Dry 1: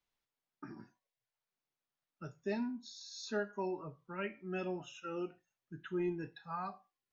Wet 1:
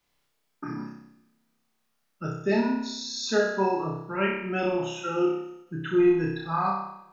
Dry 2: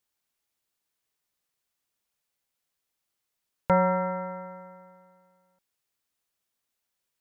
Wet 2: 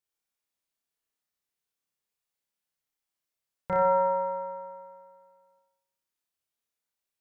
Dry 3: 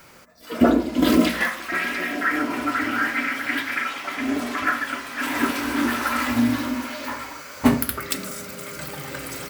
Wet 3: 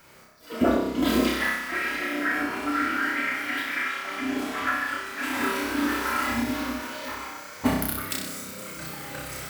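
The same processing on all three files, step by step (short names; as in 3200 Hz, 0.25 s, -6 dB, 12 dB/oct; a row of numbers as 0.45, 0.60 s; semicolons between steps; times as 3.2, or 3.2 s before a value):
flutter echo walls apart 5.3 m, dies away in 0.76 s; Schroeder reverb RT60 1.6 s, combs from 33 ms, DRR 19.5 dB; ending taper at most 170 dB/s; match loudness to -27 LUFS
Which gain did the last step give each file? +11.0, -9.5, -6.5 dB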